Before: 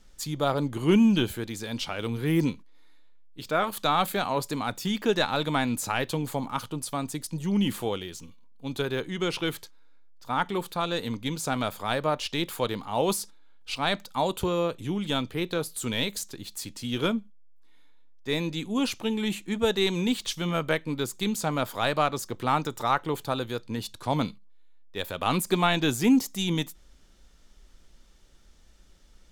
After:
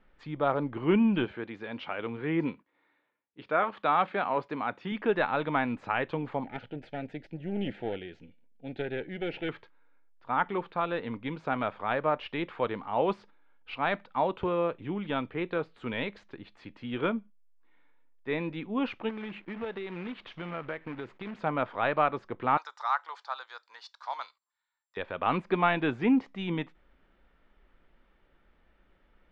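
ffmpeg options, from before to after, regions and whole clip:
ffmpeg -i in.wav -filter_complex "[0:a]asettb=1/sr,asplit=3[link_01][link_02][link_03];[link_01]atrim=end=1.254[link_04];[link_02]atrim=start=1.25:end=4.92,asetpts=PTS-STARTPTS,afade=type=in:duration=0.004:curve=qsin,afade=type=out:start_time=3.666:duration=0.004:curve=qsin,highpass=frequency=160:poles=1,bandreject=frequency=7700:width=8.8[link_05];[link_03]atrim=start=4.916[link_06];[link_04][link_05]acrossfade=duration=0.004:curve1=hsin:curve2=qsin[link_07];[link_07][link_06]acrossfade=duration=0.004:curve1=qsin:curve2=hsin,asettb=1/sr,asplit=3[link_08][link_09][link_10];[link_08]atrim=end=6.444[link_11];[link_09]atrim=start=6.44:end=9.49,asetpts=PTS-STARTPTS,afade=type=in:duration=0.004:curve=qsin,afade=type=out:start_time=3.046:duration=0.004:curve=qsin,aeval=exprs='clip(val(0),-1,0.015)':channel_layout=same,asuperstop=centerf=1100:order=4:qfactor=1.5[link_12];[link_10]atrim=start=9.486[link_13];[link_11][link_12]acrossfade=duration=0.004:curve1=hsin:curve2=qsin[link_14];[link_14][link_13]acrossfade=duration=0.004:curve1=qsin:curve2=hsin,asettb=1/sr,asplit=3[link_15][link_16][link_17];[link_15]atrim=end=19.094[link_18];[link_16]atrim=start=19.09:end=21.39,asetpts=PTS-STARTPTS,afade=type=in:duration=0.004:curve=qsin,afade=type=out:start_time=2.296:duration=0.004:curve=qsin,agate=range=-33dB:threshold=-45dB:ratio=3:release=100:detection=peak,acompressor=threshold=-31dB:ratio=5:attack=3.2:release=140:knee=1:detection=peak,acrusher=bits=2:mode=log:mix=0:aa=0.000001[link_19];[link_17]atrim=start=21.386[link_20];[link_18][link_19]acrossfade=duration=0.004:curve1=hsin:curve2=qsin[link_21];[link_21][link_20]acrossfade=duration=0.004:curve1=qsin:curve2=hsin,asettb=1/sr,asplit=3[link_22][link_23][link_24];[link_22]atrim=end=22.574[link_25];[link_23]atrim=start=22.57:end=24.97,asetpts=PTS-STARTPTS,afade=type=in:duration=0.004:curve=qsin,afade=type=out:start_time=2.396:duration=0.004:curve=qsin,highpass=frequency=900:width=0.5412,highpass=frequency=900:width=1.3066,highshelf=frequency=3800:width_type=q:width=3:gain=12.5,aeval=exprs='val(0)+0.002*sin(2*PI*7400*n/s)':channel_layout=same[link_26];[link_24]atrim=start=24.966[link_27];[link_25][link_26]acrossfade=duration=0.004:curve1=hsin:curve2=qsin[link_28];[link_28][link_27]acrossfade=duration=0.004:curve1=qsin:curve2=hsin,lowpass=frequency=2400:width=0.5412,lowpass=frequency=2400:width=1.3066,lowshelf=frequency=200:gain=-10" out.wav

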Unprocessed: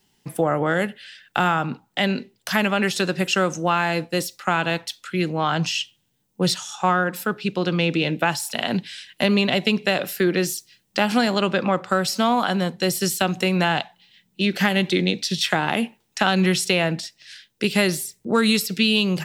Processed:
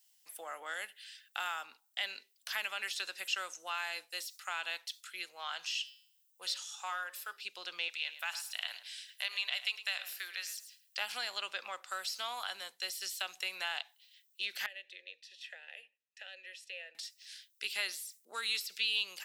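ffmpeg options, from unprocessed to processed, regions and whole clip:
ffmpeg -i in.wav -filter_complex "[0:a]asettb=1/sr,asplit=3[link_01][link_02][link_03];[link_01]atrim=end=5.254[link_04];[link_02]atrim=start=5.25:end=7.37,asetpts=PTS-STARTPTS,afade=type=in:duration=0.004:curve=qsin,afade=type=out:start_time=2.116:duration=0.004:curve=qsin,equalizer=frequency=250:width_type=o:width=0.64:gain=-15,bandreject=frequency=136.8:width_type=h:width=4,bandreject=frequency=273.6:width_type=h:width=4,bandreject=frequency=410.4:width_type=h:width=4,bandreject=frequency=547.2:width_type=h:width=4,bandreject=frequency=684:width_type=h:width=4,bandreject=frequency=820.8:width_type=h:width=4,bandreject=frequency=957.6:width_type=h:width=4,bandreject=frequency=1094.4:width_type=h:width=4,bandreject=frequency=1231.2:width_type=h:width=4,bandreject=frequency=1368:width_type=h:width=4,bandreject=frequency=1504.8:width_type=h:width=4,bandreject=frequency=1641.6:width_type=h:width=4,bandreject=frequency=1778.4:width_type=h:width=4,bandreject=frequency=1915.2:width_type=h:width=4,bandreject=frequency=2052:width_type=h:width=4,bandreject=frequency=2188.8:width_type=h:width=4,bandreject=frequency=2325.6:width_type=h:width=4,bandreject=frequency=2462.4:width_type=h:width=4,bandreject=frequency=2599.2:width_type=h:width=4,bandreject=frequency=2736:width_type=h:width=4,bandreject=frequency=2872.8:width_type=h:width=4,bandreject=frequency=3009.6:width_type=h:width=4,bandreject=frequency=3146.4:width_type=h:width=4,bandreject=frequency=3283.2:width_type=h:width=4,bandreject=frequency=3420:width_type=h:width=4,bandreject=frequency=3556.8:width_type=h:width=4,bandreject=frequency=3693.6:width_type=h:width=4,bandreject=frequency=3830.4:width_type=h:width=4,bandreject=frequency=3967.2:width_type=h:width=4,bandreject=frequency=4104:width_type=h:width=4,bandreject=frequency=4240.8:width_type=h:width=4,bandreject=frequency=4377.6:width_type=h:width=4,bandreject=frequency=4514.4:width_type=h:width=4,bandreject=frequency=4651.2:width_type=h:width=4,bandreject=frequency=4788:width_type=h:width=4,bandreject=frequency=4924.8:width_type=h:width=4,bandreject=frequency=5061.6:width_type=h:width=4,bandreject=frequency=5198.4:width_type=h:width=4,bandreject=frequency=5335.2:width_type=h:width=4[link_05];[link_03]atrim=start=7.366[link_06];[link_04][link_05]acrossfade=duration=0.004:curve1=hsin:curve2=qsin[link_07];[link_07][link_06]acrossfade=duration=0.004:curve1=qsin:curve2=hsin,asettb=1/sr,asplit=3[link_08][link_09][link_10];[link_08]atrim=end=7.884[link_11];[link_09]atrim=start=7.88:end=10.97,asetpts=PTS-STARTPTS,afade=type=in:duration=0.004:curve=qsin,afade=type=out:start_time=3.086:duration=0.004:curve=qsin,highpass=860,asplit=2[link_12][link_13];[link_13]adelay=108,lowpass=frequency=2800:poles=1,volume=-11.5dB,asplit=2[link_14][link_15];[link_15]adelay=108,lowpass=frequency=2800:poles=1,volume=0.22,asplit=2[link_16][link_17];[link_17]adelay=108,lowpass=frequency=2800:poles=1,volume=0.22[link_18];[link_12][link_14][link_16][link_18]amix=inputs=4:normalize=0,atrim=end_sample=136269[link_19];[link_10]atrim=start=10.966[link_20];[link_11][link_19]acrossfade=duration=0.004:curve1=hsin:curve2=qsin[link_21];[link_21][link_20]acrossfade=duration=0.004:curve1=qsin:curve2=hsin,asettb=1/sr,asplit=3[link_22][link_23][link_24];[link_22]atrim=end=14.664[link_25];[link_23]atrim=start=14.66:end=16.95,asetpts=PTS-STARTPTS,afade=type=in:duration=0.004:curve=qsin,afade=type=out:start_time=2.286:duration=0.004:curve=qsin,asplit=3[link_26][link_27][link_28];[link_26]bandpass=frequency=530:width_type=q:width=8,volume=0dB[link_29];[link_27]bandpass=frequency=1840:width_type=q:width=8,volume=-6dB[link_30];[link_28]bandpass=frequency=2480:width_type=q:width=8,volume=-9dB[link_31];[link_29][link_30][link_31]amix=inputs=3:normalize=0,bandreject=frequency=60:width_type=h:width=6,bandreject=frequency=120:width_type=h:width=6,bandreject=frequency=180:width_type=h:width=6,bandreject=frequency=240:width_type=h:width=6,bandreject=frequency=300:width_type=h:width=6[link_32];[link_24]atrim=start=16.946[link_33];[link_25][link_32]acrossfade=duration=0.004:curve1=hsin:curve2=qsin[link_34];[link_34][link_33]acrossfade=duration=0.004:curve1=qsin:curve2=hsin,acrossover=split=4400[link_35][link_36];[link_36]acompressor=threshold=-45dB:ratio=4:attack=1:release=60[link_37];[link_35][link_37]amix=inputs=2:normalize=0,highpass=550,aderivative,volume=-2dB" out.wav

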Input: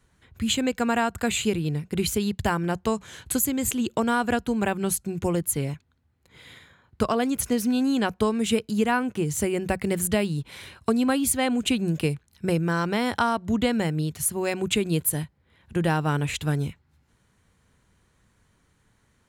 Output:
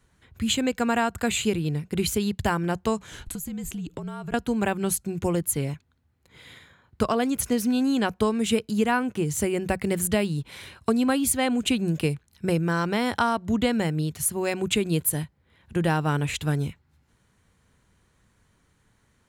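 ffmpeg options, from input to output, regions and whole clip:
ffmpeg -i in.wav -filter_complex "[0:a]asettb=1/sr,asplit=3[link_01][link_02][link_03];[link_01]atrim=end=3.114[link_04];[link_02]atrim=start=3.11:end=4.34,asetpts=PTS-STARTPTS,afade=type=in:duration=0.004:curve=qsin,afade=type=out:start_time=1.226:duration=0.004:curve=qsin,equalizer=frequency=130:width_type=o:width=2.6:gain=9.5,acompressor=threshold=-30dB:ratio=12:attack=3.2:release=140:knee=1:detection=peak,afreqshift=-51[link_05];[link_03]atrim=start=4.336[link_06];[link_04][link_05]acrossfade=duration=0.004:curve1=hsin:curve2=qsin[link_07];[link_07][link_06]acrossfade=duration=0.004:curve1=qsin:curve2=hsin" out.wav

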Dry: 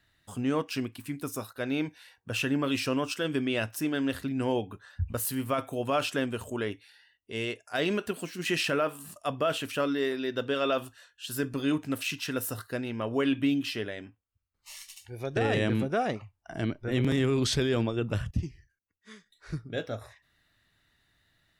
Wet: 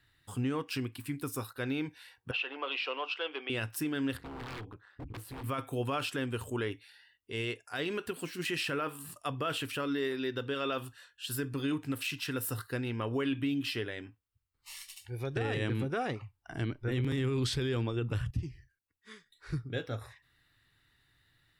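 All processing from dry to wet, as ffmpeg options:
ffmpeg -i in.wav -filter_complex "[0:a]asettb=1/sr,asplit=3[link_01][link_02][link_03];[link_01]atrim=end=2.314[link_04];[link_02]atrim=start=2.31:end=3.5,asetpts=PTS-STARTPTS,afade=type=in:duration=0.004:curve=qsin,afade=type=out:start_time=1.186:duration=0.004:curve=qsin,asoftclip=type=hard:threshold=-21dB,highpass=frequency=490:width=0.5412,highpass=frequency=490:width=1.3066,equalizer=frequency=750:width_type=q:width=4:gain=6,equalizer=frequency=1700:width_type=q:width=4:gain=-6,equalizer=frequency=2800:width_type=q:width=4:gain=4,lowpass=frequency=3700:width=0.5412,lowpass=frequency=3700:width=1.3066[link_05];[link_03]atrim=start=3.496[link_06];[link_04][link_05]acrossfade=duration=0.004:curve1=hsin:curve2=qsin[link_07];[link_07][link_06]acrossfade=duration=0.004:curve1=qsin:curve2=hsin,asettb=1/sr,asplit=3[link_08][link_09][link_10];[link_08]atrim=end=4.174[link_11];[link_09]atrim=start=4.17:end=5.44,asetpts=PTS-STARTPTS,afade=type=in:duration=0.004:curve=qsin,afade=type=out:start_time=1.266:duration=0.004:curve=qsin,lowpass=frequency=1500:poles=1,tremolo=f=210:d=0.857,aeval=exprs='0.0158*(abs(mod(val(0)/0.0158+3,4)-2)-1)':channel_layout=same[link_12];[link_10]atrim=start=5.436[link_13];[link_11][link_12]acrossfade=duration=0.004:curve1=hsin:curve2=qsin[link_14];[link_14][link_13]acrossfade=duration=0.004:curve1=qsin:curve2=hsin,equalizer=frequency=125:width_type=o:width=0.33:gain=5,equalizer=frequency=200:width_type=o:width=0.33:gain=-8,equalizer=frequency=630:width_type=o:width=0.33:gain=-10,equalizer=frequency=6300:width_type=o:width=0.33:gain=-6,alimiter=limit=-24dB:level=0:latency=1:release=173" out.wav

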